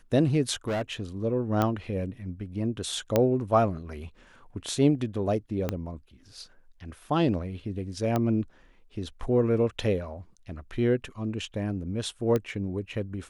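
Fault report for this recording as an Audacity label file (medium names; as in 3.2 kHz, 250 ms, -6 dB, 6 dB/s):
0.670000	1.020000	clipped -25.5 dBFS
1.620000	1.620000	pop -12 dBFS
3.160000	3.160000	pop -9 dBFS
5.690000	5.690000	pop -14 dBFS
8.160000	8.160000	pop -14 dBFS
12.360000	12.360000	pop -15 dBFS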